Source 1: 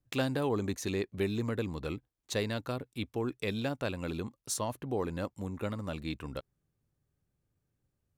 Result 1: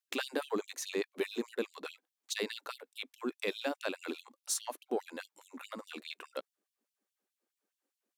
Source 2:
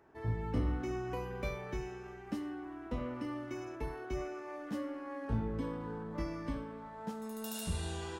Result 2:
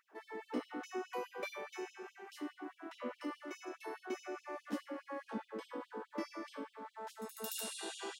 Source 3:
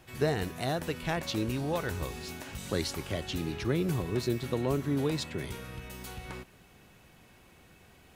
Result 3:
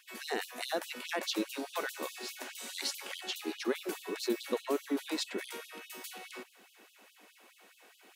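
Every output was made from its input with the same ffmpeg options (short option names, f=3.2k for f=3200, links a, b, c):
-filter_complex "[0:a]asplit=2[a][b];[b]asoftclip=type=tanh:threshold=-24dB,volume=-5dB[c];[a][c]amix=inputs=2:normalize=0,afftfilt=real='re*gte(b*sr/1024,200*pow(2900/200,0.5+0.5*sin(2*PI*4.8*pts/sr)))':imag='im*gte(b*sr/1024,200*pow(2900/200,0.5+0.5*sin(2*PI*4.8*pts/sr)))':win_size=1024:overlap=0.75,volume=-2.5dB"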